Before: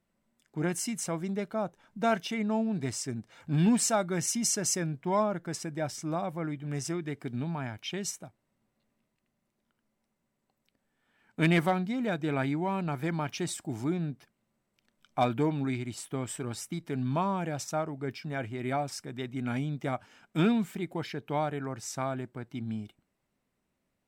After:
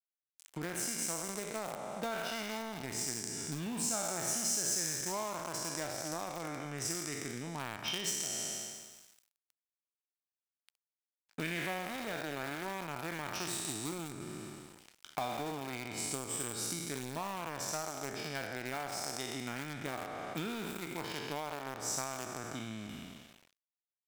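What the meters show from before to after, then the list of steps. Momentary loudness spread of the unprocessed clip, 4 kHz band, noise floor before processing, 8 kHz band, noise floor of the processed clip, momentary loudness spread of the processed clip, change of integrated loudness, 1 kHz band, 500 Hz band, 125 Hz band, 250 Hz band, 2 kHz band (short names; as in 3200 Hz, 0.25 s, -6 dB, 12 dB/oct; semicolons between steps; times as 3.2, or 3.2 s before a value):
10 LU, +0.5 dB, -80 dBFS, 0.0 dB, under -85 dBFS, 10 LU, -5.5 dB, -6.0 dB, -8.0 dB, -12.5 dB, -11.5 dB, -2.5 dB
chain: spectral trails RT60 1.91 s; in parallel at -11 dB: bit-crush 4-bit; on the sum: compressor 6:1, threshold -36 dBFS, peak gain reduction 18.5 dB; tilt +1.5 dB/oct; crossover distortion -53.5 dBFS; mismatched tape noise reduction encoder only; gain +2 dB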